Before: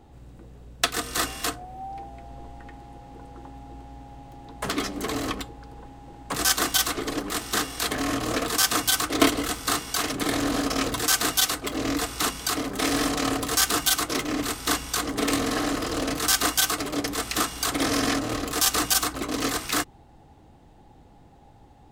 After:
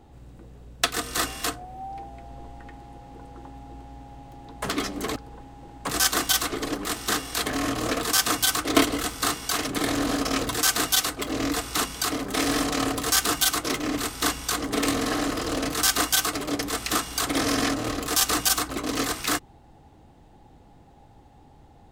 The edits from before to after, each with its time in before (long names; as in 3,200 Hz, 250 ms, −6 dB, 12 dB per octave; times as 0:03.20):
0:05.16–0:05.61: remove